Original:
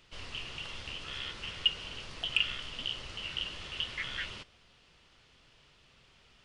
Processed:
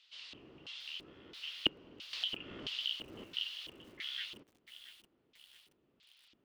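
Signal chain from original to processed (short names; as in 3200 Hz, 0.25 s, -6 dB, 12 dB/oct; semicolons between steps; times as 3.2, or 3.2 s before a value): LFO band-pass square 1.5 Hz 310–3800 Hz; 2.13–3.24 upward compressor, threshold -35 dBFS; lo-fi delay 0.676 s, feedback 55%, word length 9-bit, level -13 dB; gain +2 dB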